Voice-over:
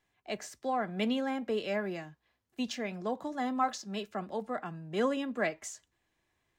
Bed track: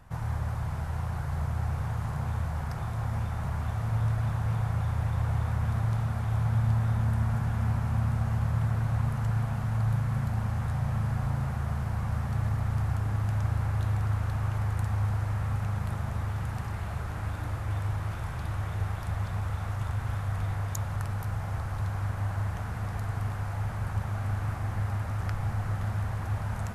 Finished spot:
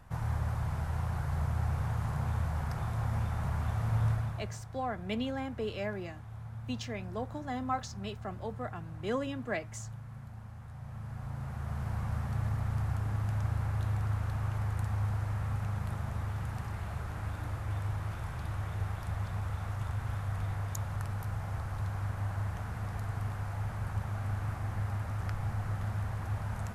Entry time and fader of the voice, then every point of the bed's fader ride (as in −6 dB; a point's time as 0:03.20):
4.10 s, −3.5 dB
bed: 0:04.11 −1.5 dB
0:04.63 −17 dB
0:10.67 −17 dB
0:11.89 −4 dB